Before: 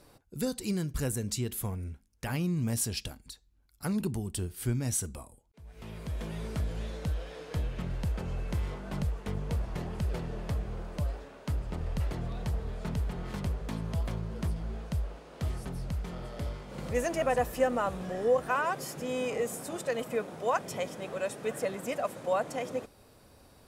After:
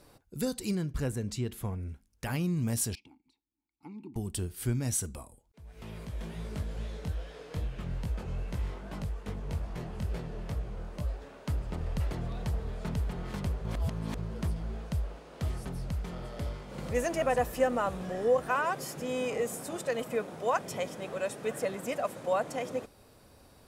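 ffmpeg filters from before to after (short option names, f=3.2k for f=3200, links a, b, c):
-filter_complex "[0:a]asettb=1/sr,asplit=3[a][b][c];[a]atrim=end=0.754[d];[b]atrim=start=0.75:end=1.89,asetpts=PTS-STARTPTS,afade=t=in:d=0.004:c=qsin,afade=t=out:st=1.136:d=0.004:c=qsin,lowpass=f=3k:p=1[e];[c]atrim=start=1.886[f];[d][e]acrossfade=d=0.004:c1=hsin:c2=qsin[g];[g][f]acrossfade=d=0.004:c1=qsin:c2=hsin,asettb=1/sr,asplit=3[h][i][j];[h]atrim=end=2.954[k];[i]atrim=start=2.95:end=4.16,asetpts=PTS-STARTPTS,afade=t=in:d=0.004:c=qsin,afade=t=out:st=1.206:d=0.004:c=qsin,asplit=3[l][m][n];[l]bandpass=f=300:t=q:w=8,volume=0dB[o];[m]bandpass=f=870:t=q:w=8,volume=-6dB[p];[n]bandpass=f=2.24k:t=q:w=8,volume=-9dB[q];[o][p][q]amix=inputs=3:normalize=0[r];[j]atrim=start=4.156[s];[k][r]acrossfade=d=0.004:c1=hsin:c2=qsin[t];[t][s]acrossfade=d=0.004:c1=qsin:c2=hsin,asettb=1/sr,asplit=3[u][v][w];[u]atrim=end=6.054[x];[v]atrim=start=6.05:end=11.22,asetpts=PTS-STARTPTS,afade=t=in:d=0.004:c=qsin,afade=t=out:st=5.166:d=0.004:c=qsin,flanger=delay=16.5:depth=7.2:speed=2.4[y];[w]atrim=start=11.216[z];[x][y]acrossfade=d=0.004:c1=hsin:c2=qsin[aa];[aa][z]acrossfade=d=0.004:c1=qsin:c2=hsin,asplit=3[ab][ac][ad];[ab]atrim=end=13.652[ae];[ac]atrim=start=13.648:end=14.182,asetpts=PTS-STARTPTS,areverse[af];[ad]atrim=start=14.178[ag];[ae][af]acrossfade=d=0.004:c1=hsin:c2=hsin[ah];[ah][ag]acrossfade=d=0.004:c1=hsin:c2=hsin"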